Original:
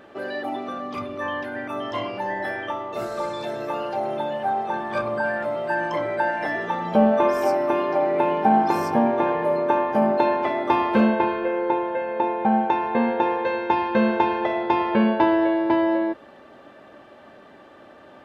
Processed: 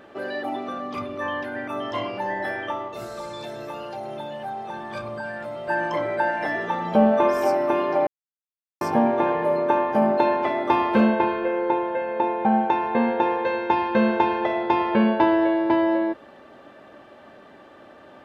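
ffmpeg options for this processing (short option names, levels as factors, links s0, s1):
-filter_complex "[0:a]asettb=1/sr,asplit=3[s0][s1][s2];[s0]atrim=end=2.884[s3];[s1]atrim=start=2.88:end=5.68,asetpts=PTS-STARTPTS,afade=t=in:d=0.004:c=qsin,afade=t=out:st=2.796:d=0.004:c=qsin,acrossover=split=160|3000[s4][s5][s6];[s5]acompressor=threshold=0.0158:ratio=2:attack=3.2:release=140:knee=2.83:detection=peak[s7];[s4][s7][s6]amix=inputs=3:normalize=0[s8];[s2]atrim=start=5.676[s9];[s3][s8]acrossfade=d=0.004:c1=hsin:c2=qsin[s10];[s10][s9]acrossfade=d=0.004:c1=qsin:c2=hsin,asplit=3[s11][s12][s13];[s11]atrim=end=8.07,asetpts=PTS-STARTPTS,afade=t=out:st=8.066:d=0.004:c=hsin[s14];[s12]atrim=start=8.07:end=8.81,asetpts=PTS-STARTPTS,volume=0[s15];[s13]atrim=start=8.81,asetpts=PTS-STARTPTS,afade=t=in:d=0.004:c=hsin[s16];[s14][s15][s16]concat=n=3:v=0:a=1"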